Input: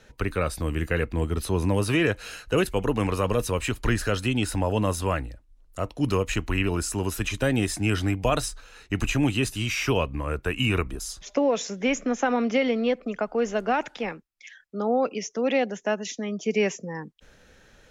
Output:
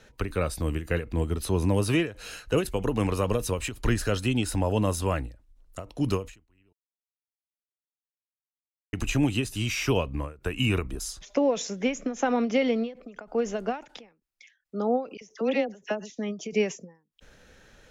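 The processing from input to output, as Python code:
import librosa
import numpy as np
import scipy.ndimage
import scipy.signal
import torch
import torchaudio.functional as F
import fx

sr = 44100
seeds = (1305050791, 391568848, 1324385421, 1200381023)

y = fx.dispersion(x, sr, late='lows', ms=44.0, hz=1400.0, at=(15.17, 16.1))
y = fx.edit(y, sr, fx.silence(start_s=6.73, length_s=2.2), tone=tone)
y = fx.dynamic_eq(y, sr, hz=1600.0, q=0.78, threshold_db=-40.0, ratio=4.0, max_db=-4)
y = fx.end_taper(y, sr, db_per_s=170.0)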